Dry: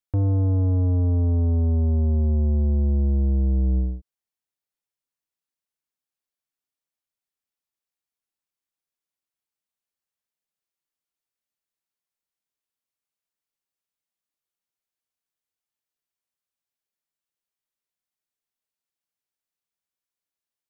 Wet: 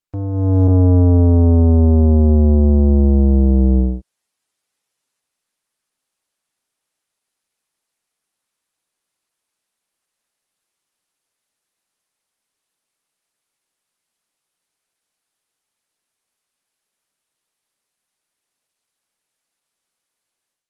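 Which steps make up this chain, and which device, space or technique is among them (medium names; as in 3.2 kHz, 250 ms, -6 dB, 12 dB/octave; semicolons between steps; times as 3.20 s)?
video call (high-pass 150 Hz 6 dB/octave; level rider gain up to 15.5 dB; Opus 20 kbps 48 kHz)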